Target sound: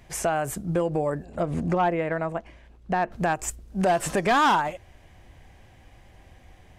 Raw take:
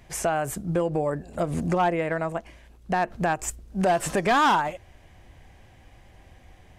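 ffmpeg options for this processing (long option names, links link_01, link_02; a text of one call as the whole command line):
ffmpeg -i in.wav -filter_complex "[0:a]asettb=1/sr,asplit=3[link_01][link_02][link_03];[link_01]atrim=end=1.254[link_04];[link_02]atrim=start=1.25:end=3.12,asetpts=PTS-STARTPTS,afade=type=in:duration=0.004:curve=qsin,afade=type=out:start_time=1.866:duration=0.004:curve=qsin,aemphasis=mode=reproduction:type=50kf[link_05];[link_03]atrim=start=3.116[link_06];[link_04][link_05]acrossfade=duration=0.004:curve1=hsin:curve2=qsin[link_07];[link_07][link_06]acrossfade=duration=0.004:curve1=qsin:curve2=hsin" out.wav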